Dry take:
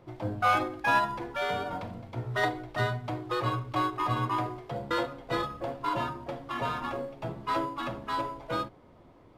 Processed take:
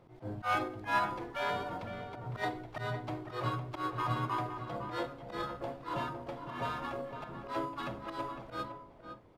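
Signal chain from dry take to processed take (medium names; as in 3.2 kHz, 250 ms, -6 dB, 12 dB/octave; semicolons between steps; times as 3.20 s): slow attack 105 ms; echo from a far wall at 87 m, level -8 dB; harmony voices +4 st -14 dB; trim -5 dB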